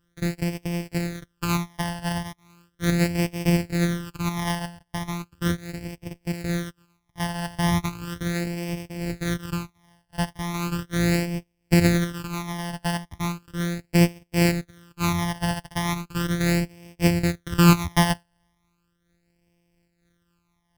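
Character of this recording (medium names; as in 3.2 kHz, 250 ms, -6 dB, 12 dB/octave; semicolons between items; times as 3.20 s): a buzz of ramps at a fixed pitch in blocks of 256 samples; phasing stages 12, 0.37 Hz, lowest notch 400–1300 Hz; random flutter of the level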